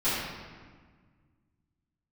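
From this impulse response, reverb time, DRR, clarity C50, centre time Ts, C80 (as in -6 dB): 1.6 s, -16.0 dB, -2.0 dB, 100 ms, 1.0 dB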